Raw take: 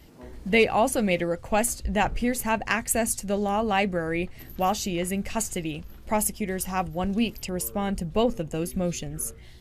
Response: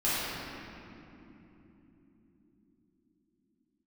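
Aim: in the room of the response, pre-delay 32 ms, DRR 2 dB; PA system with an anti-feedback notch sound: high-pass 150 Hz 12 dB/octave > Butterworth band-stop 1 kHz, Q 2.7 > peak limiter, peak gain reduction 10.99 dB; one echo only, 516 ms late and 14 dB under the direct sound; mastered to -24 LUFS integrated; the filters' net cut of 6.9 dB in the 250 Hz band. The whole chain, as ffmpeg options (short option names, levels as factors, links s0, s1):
-filter_complex "[0:a]equalizer=f=250:t=o:g=-8,aecho=1:1:516:0.2,asplit=2[s0][s1];[1:a]atrim=start_sample=2205,adelay=32[s2];[s1][s2]afir=irnorm=-1:irlink=0,volume=0.2[s3];[s0][s3]amix=inputs=2:normalize=0,highpass=150,asuperstop=centerf=1000:order=8:qfactor=2.7,volume=1.78,alimiter=limit=0.188:level=0:latency=1"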